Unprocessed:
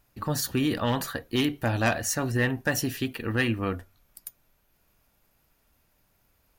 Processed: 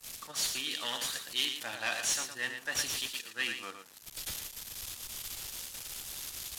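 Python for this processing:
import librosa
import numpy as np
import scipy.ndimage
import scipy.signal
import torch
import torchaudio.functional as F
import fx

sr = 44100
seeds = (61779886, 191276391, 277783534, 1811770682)

p1 = x + 0.5 * 10.0 ** (-29.0 / 20.0) * np.diff(np.sign(x), prepend=np.sign(x[:1]))
p2 = np.diff(p1, prepend=0.0)
p3 = np.clip(p2, -10.0 ** (-25.0 / 20.0), 10.0 ** (-25.0 / 20.0))
p4 = scipy.signal.sosfilt(scipy.signal.butter(2, 6300.0, 'lowpass', fs=sr, output='sos'), p3)
p5 = fx.level_steps(p4, sr, step_db=16)
p6 = p4 + (p5 * 10.0 ** (1.0 / 20.0))
p7 = fx.dynamic_eq(p6, sr, hz=3400.0, q=2.6, threshold_db=-51.0, ratio=4.0, max_db=5)
p8 = p7 + fx.echo_single(p7, sr, ms=115, db=-5.5, dry=0)
y = fx.band_widen(p8, sr, depth_pct=100)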